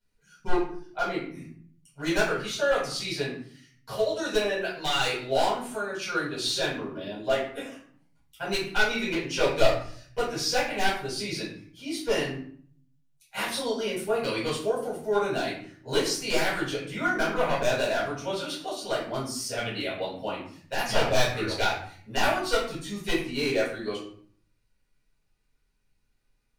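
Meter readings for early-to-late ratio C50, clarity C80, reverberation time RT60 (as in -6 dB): 4.0 dB, 8.5 dB, 0.55 s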